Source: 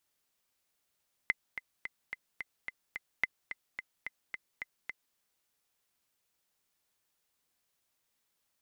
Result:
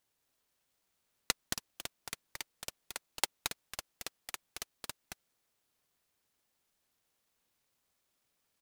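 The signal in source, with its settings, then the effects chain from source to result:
metronome 217 bpm, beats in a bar 7, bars 2, 2.05 kHz, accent 11 dB -14 dBFS
delay 223 ms -4.5 dB; delay time shaken by noise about 2.6 kHz, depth 0.17 ms

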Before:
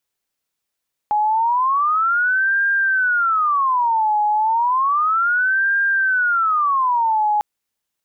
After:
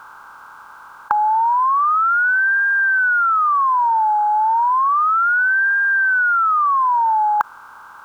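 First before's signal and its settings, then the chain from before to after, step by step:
siren wail 839–1600 Hz 0.32 per s sine -14.5 dBFS 6.30 s
spectral levelling over time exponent 0.4

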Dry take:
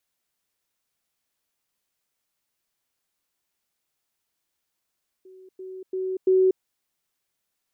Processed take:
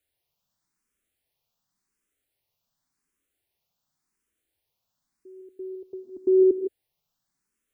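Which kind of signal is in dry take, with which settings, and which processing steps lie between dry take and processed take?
level ladder 375 Hz -45 dBFS, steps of 10 dB, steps 4, 0.24 s 0.10 s
bass shelf 360 Hz +8.5 dB; gated-style reverb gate 180 ms rising, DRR 7.5 dB; barber-pole phaser +0.9 Hz

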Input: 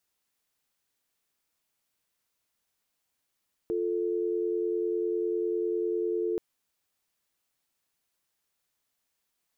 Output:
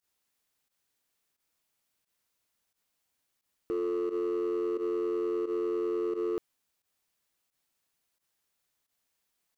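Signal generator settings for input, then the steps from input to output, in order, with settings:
call progress tone dial tone, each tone -29 dBFS 2.68 s
hard clipper -27 dBFS; volume shaper 88 bpm, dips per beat 1, -15 dB, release 75 ms

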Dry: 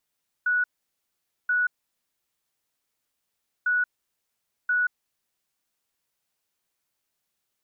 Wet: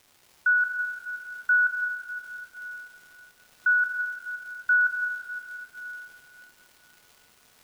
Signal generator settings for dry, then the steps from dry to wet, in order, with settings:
beep pattern sine 1.47 kHz, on 0.18 s, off 0.85 s, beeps 2, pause 1.99 s, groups 2, -20 dBFS
in parallel at -1 dB: compressor with a negative ratio -32 dBFS, ratio -1; on the sum: crackle 470 per s -45 dBFS; plate-style reverb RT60 3.2 s, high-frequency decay 0.85×, DRR 3 dB

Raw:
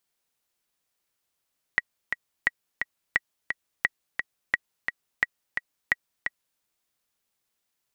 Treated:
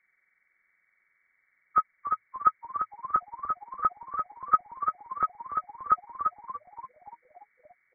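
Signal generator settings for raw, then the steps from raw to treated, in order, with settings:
metronome 174 bpm, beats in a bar 2, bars 7, 1.92 kHz, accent 6 dB -7.5 dBFS
knee-point frequency compression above 1.1 kHz 4:1; comb 5.4 ms, depth 30%; frequency-shifting echo 289 ms, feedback 59%, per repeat -110 Hz, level -12 dB

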